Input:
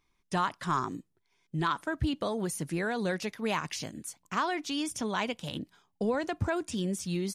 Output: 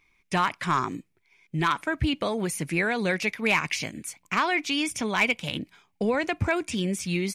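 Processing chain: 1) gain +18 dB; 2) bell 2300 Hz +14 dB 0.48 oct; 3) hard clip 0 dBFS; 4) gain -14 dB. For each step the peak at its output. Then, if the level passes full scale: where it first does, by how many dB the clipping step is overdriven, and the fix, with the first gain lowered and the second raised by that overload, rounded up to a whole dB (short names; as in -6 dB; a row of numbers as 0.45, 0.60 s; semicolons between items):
+1.5, +6.0, 0.0, -14.0 dBFS; step 1, 6.0 dB; step 1 +12 dB, step 4 -8 dB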